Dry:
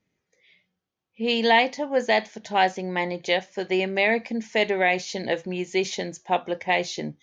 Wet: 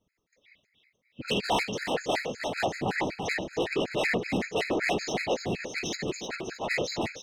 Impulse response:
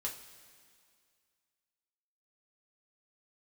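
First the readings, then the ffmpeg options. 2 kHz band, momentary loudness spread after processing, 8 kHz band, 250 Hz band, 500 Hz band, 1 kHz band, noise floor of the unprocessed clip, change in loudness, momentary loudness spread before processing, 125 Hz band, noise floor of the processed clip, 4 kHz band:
−5.5 dB, 6 LU, can't be measured, −4.0 dB, −6.0 dB, −8.0 dB, −81 dBFS, −5.5 dB, 8 LU, 0.0 dB, −77 dBFS, −4.5 dB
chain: -filter_complex "[0:a]afftfilt=real='hypot(re,im)*cos(2*PI*random(0))':imag='hypot(re,im)*sin(2*PI*random(1))':win_size=512:overlap=0.75,adynamicequalizer=threshold=0.002:dfrequency=140:dqfactor=5.1:tfrequency=140:tqfactor=5.1:attack=5:release=100:ratio=0.375:range=2:mode=cutabove:tftype=bell,asoftclip=type=tanh:threshold=-28.5dB,asplit=2[link_01][link_02];[link_02]aecho=0:1:310|620|930|1240|1550|1860|2170:0.473|0.256|0.138|0.0745|0.0402|0.0217|0.0117[link_03];[link_01][link_03]amix=inputs=2:normalize=0,afftfilt=real='re*gt(sin(2*PI*5.3*pts/sr)*(1-2*mod(floor(b*sr/1024/1300),2)),0)':imag='im*gt(sin(2*PI*5.3*pts/sr)*(1-2*mod(floor(b*sr/1024/1300),2)),0)':win_size=1024:overlap=0.75,volume=7.5dB"

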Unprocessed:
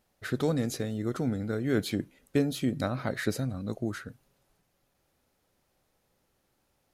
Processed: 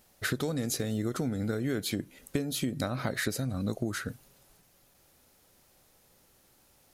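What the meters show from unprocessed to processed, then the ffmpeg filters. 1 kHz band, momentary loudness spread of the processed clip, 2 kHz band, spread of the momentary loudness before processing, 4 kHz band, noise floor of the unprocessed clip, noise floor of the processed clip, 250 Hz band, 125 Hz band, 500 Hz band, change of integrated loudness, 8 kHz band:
−1.0 dB, 5 LU, +2.0 dB, 7 LU, +3.0 dB, −75 dBFS, −64 dBFS, −2.0 dB, −1.0 dB, −3.0 dB, −1.5 dB, +6.0 dB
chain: -af "highshelf=frequency=4300:gain=8.5,acompressor=threshold=-34dB:ratio=16,volume=7dB"

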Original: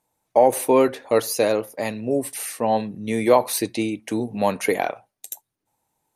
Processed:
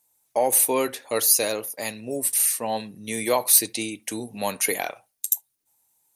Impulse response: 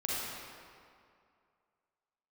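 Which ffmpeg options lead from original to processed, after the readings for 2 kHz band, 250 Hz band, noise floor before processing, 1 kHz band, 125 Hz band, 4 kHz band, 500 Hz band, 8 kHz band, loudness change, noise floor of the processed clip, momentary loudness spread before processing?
−1.0 dB, −8.0 dB, −80 dBFS, −6.0 dB, −8.5 dB, +4.0 dB, −7.5 dB, +10.0 dB, −0.5 dB, −73 dBFS, 11 LU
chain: -filter_complex "[0:a]asplit=2[link_01][link_02];[1:a]atrim=start_sample=2205,atrim=end_sample=3528,lowpass=2800[link_03];[link_02][link_03]afir=irnorm=-1:irlink=0,volume=-23dB[link_04];[link_01][link_04]amix=inputs=2:normalize=0,crystalizer=i=7:c=0,volume=-9dB"

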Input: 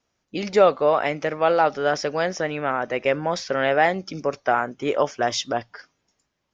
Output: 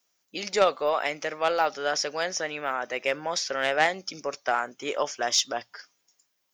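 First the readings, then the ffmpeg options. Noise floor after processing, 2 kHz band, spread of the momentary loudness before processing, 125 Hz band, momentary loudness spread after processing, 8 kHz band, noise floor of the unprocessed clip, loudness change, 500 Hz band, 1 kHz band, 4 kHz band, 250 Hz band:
−75 dBFS, −2.5 dB, 9 LU, −14.5 dB, 10 LU, can't be measured, −76 dBFS, −4.5 dB, −7.0 dB, −5.0 dB, +2.5 dB, −10.5 dB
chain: -af "aemphasis=mode=production:type=riaa,aeval=exprs='0.596*(cos(1*acos(clip(val(0)/0.596,-1,1)))-cos(1*PI/2))+0.0237*(cos(2*acos(clip(val(0)/0.596,-1,1)))-cos(2*PI/2))+0.106*(cos(3*acos(clip(val(0)/0.596,-1,1)))-cos(3*PI/2))+0.0119*(cos(4*acos(clip(val(0)/0.596,-1,1)))-cos(4*PI/2))+0.0266*(cos(5*acos(clip(val(0)/0.596,-1,1)))-cos(5*PI/2))':channel_layout=same,volume=-1.5dB"

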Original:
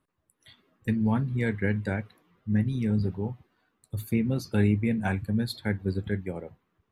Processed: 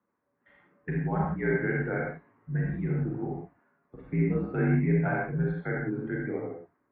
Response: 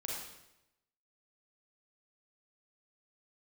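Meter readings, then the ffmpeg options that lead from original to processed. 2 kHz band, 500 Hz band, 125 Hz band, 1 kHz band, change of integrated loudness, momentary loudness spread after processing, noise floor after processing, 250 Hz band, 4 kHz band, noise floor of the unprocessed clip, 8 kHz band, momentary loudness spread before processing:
+2.5 dB, +2.5 dB, −1.0 dB, +3.0 dB, −1.0 dB, 11 LU, −77 dBFS, −2.5 dB, below −25 dB, −77 dBFS, below −30 dB, 13 LU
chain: -filter_complex "[1:a]atrim=start_sample=2205,afade=type=out:start_time=0.23:duration=0.01,atrim=end_sample=10584[link_01];[0:a][link_01]afir=irnorm=-1:irlink=0,highpass=frequency=220:width_type=q:width=0.5412,highpass=frequency=220:width_type=q:width=1.307,lowpass=frequency=2100:width_type=q:width=0.5176,lowpass=frequency=2100:width_type=q:width=0.7071,lowpass=frequency=2100:width_type=q:width=1.932,afreqshift=-64,volume=2.5dB"

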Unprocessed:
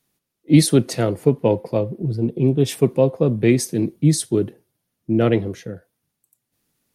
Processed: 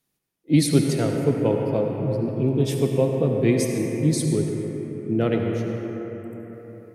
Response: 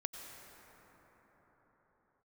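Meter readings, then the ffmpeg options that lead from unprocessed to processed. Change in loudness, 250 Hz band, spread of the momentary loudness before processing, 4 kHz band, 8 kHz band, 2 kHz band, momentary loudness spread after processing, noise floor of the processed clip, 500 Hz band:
−3.5 dB, −3.0 dB, 8 LU, −4.0 dB, −4.5 dB, −3.0 dB, 12 LU, −77 dBFS, −3.0 dB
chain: -filter_complex "[1:a]atrim=start_sample=2205,asetrate=57330,aresample=44100[link_01];[0:a][link_01]afir=irnorm=-1:irlink=0"

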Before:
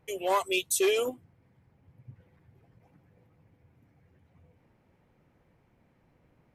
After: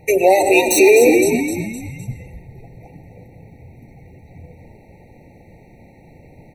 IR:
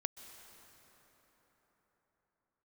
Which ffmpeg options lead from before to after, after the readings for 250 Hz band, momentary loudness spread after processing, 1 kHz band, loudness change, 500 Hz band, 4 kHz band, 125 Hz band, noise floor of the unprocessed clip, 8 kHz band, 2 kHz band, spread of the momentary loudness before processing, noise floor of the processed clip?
+21.0 dB, 21 LU, +13.0 dB, +14.0 dB, +17.5 dB, +6.5 dB, +23.0 dB, −68 dBFS, +12.0 dB, +16.5 dB, 5 LU, −47 dBFS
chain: -filter_complex "[0:a]bandreject=frequency=50:width_type=h:width=6,bandreject=frequency=100:width_type=h:width=6,bandreject=frequency=150:width_type=h:width=6,bandreject=frequency=200:width_type=h:width=6,bandreject=frequency=250:width_type=h:width=6,bandreject=frequency=300:width_type=h:width=6,bandreject=frequency=350:width_type=h:width=6,bandreject=frequency=400:width_type=h:width=6,asplit=6[link_01][link_02][link_03][link_04][link_05][link_06];[link_02]adelay=256,afreqshift=-70,volume=-10dB[link_07];[link_03]adelay=512,afreqshift=-140,volume=-16.7dB[link_08];[link_04]adelay=768,afreqshift=-210,volume=-23.5dB[link_09];[link_05]adelay=1024,afreqshift=-280,volume=-30.2dB[link_10];[link_06]adelay=1280,afreqshift=-350,volume=-37dB[link_11];[link_01][link_07][link_08][link_09][link_10][link_11]amix=inputs=6:normalize=0,acrossover=split=2600[link_12][link_13];[link_13]volume=34dB,asoftclip=hard,volume=-34dB[link_14];[link_12][link_14]amix=inputs=2:normalize=0[link_15];[1:a]atrim=start_sample=2205,afade=type=out:start_time=0.29:duration=0.01,atrim=end_sample=13230,asetrate=57330,aresample=44100[link_16];[link_15][link_16]afir=irnorm=-1:irlink=0,alimiter=level_in=26.5dB:limit=-1dB:release=50:level=0:latency=1,afftfilt=real='re*eq(mod(floor(b*sr/1024/920),2),0)':imag='im*eq(mod(floor(b*sr/1024/920),2),0)':win_size=1024:overlap=0.75,volume=-1dB"

